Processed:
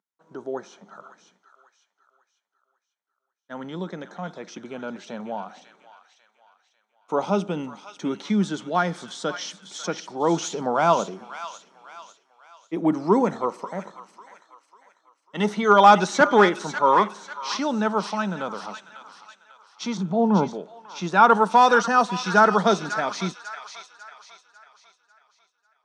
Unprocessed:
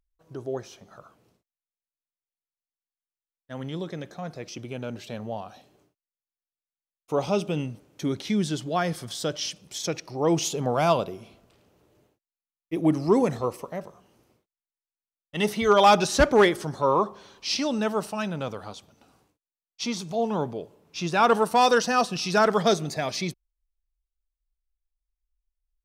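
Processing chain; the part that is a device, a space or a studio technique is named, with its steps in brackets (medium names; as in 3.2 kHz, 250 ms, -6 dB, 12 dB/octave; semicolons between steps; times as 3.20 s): 19.97–20.48 s: RIAA curve playback; television speaker (cabinet simulation 190–7300 Hz, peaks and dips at 190 Hz +8 dB, 920 Hz +8 dB, 1.4 kHz +8 dB, 2.7 kHz -5 dB, 4.9 kHz -7 dB); feedback echo behind a high-pass 546 ms, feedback 41%, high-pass 1.5 kHz, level -7.5 dB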